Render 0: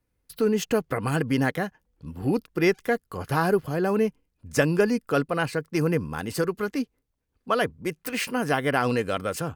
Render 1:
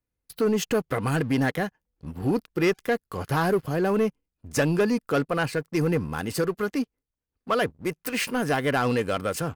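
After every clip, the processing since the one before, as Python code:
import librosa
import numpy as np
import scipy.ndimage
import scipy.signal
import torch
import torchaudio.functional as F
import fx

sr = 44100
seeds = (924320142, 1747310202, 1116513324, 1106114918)

y = fx.leveller(x, sr, passes=2)
y = y * 10.0 ** (-6.0 / 20.0)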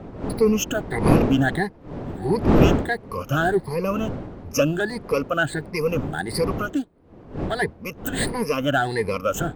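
y = fx.spec_ripple(x, sr, per_octave=0.87, drift_hz=1.5, depth_db=23)
y = fx.dmg_wind(y, sr, seeds[0], corner_hz=360.0, level_db=-23.0)
y = y * 10.0 ** (-3.5 / 20.0)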